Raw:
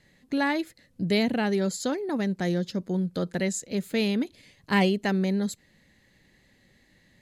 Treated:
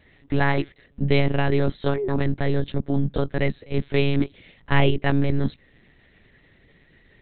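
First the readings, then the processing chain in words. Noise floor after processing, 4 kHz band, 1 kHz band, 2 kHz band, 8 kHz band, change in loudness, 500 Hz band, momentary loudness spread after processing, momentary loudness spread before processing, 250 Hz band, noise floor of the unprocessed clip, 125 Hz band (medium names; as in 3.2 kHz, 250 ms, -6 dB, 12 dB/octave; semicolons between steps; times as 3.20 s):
-58 dBFS, +0.5 dB, +3.0 dB, +3.5 dB, under -40 dB, +3.0 dB, +4.0 dB, 7 LU, 8 LU, +0.5 dB, -63 dBFS, +9.0 dB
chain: monotone LPC vocoder at 8 kHz 140 Hz; trim +6 dB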